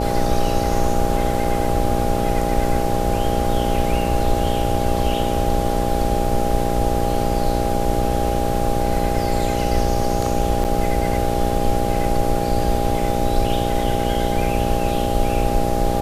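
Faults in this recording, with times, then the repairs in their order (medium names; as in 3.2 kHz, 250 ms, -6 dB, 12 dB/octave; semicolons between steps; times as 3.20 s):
buzz 60 Hz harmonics 11 -23 dBFS
whine 810 Hz -24 dBFS
10.64–10.65 s: dropout 8 ms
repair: band-stop 810 Hz, Q 30; de-hum 60 Hz, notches 11; interpolate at 10.64 s, 8 ms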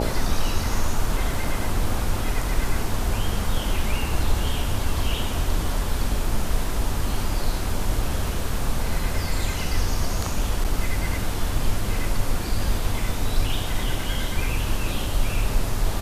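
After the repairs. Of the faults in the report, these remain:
nothing left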